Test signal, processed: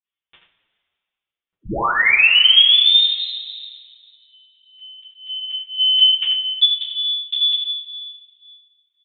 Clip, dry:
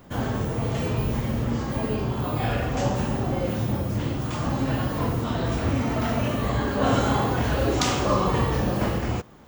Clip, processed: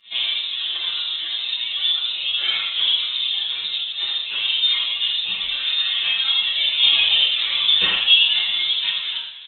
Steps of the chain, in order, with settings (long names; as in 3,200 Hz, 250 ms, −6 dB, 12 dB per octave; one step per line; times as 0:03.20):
high-pass filter 310 Hz 12 dB per octave
reverb reduction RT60 1.5 s
high-shelf EQ 2,500 Hz −9 dB
fake sidechain pumping 157 BPM, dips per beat 1, −24 dB, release 61 ms
high-frequency loss of the air 250 metres
single-tap delay 82 ms −6.5 dB
coupled-rooms reverb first 0.23 s, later 2 s, from −18 dB, DRR −8 dB
voice inversion scrambler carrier 3,900 Hz
barber-pole flanger 7.6 ms +1.9 Hz
level +6.5 dB